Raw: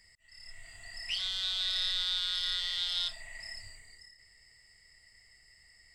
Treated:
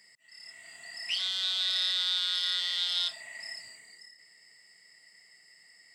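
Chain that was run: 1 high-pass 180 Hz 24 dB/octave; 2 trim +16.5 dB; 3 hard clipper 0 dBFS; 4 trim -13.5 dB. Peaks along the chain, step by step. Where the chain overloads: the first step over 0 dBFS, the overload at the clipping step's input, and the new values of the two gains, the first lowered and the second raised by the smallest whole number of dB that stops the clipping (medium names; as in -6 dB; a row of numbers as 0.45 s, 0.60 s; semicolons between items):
-20.0 dBFS, -3.5 dBFS, -3.5 dBFS, -17.0 dBFS; nothing clips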